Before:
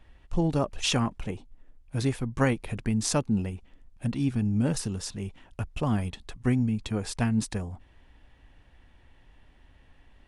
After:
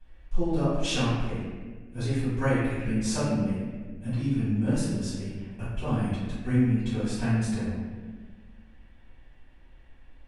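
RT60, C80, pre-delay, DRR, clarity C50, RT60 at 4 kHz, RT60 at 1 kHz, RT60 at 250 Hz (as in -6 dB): 1.5 s, 0.5 dB, 4 ms, -15.0 dB, -2.5 dB, 1.0 s, 1.3 s, 2.1 s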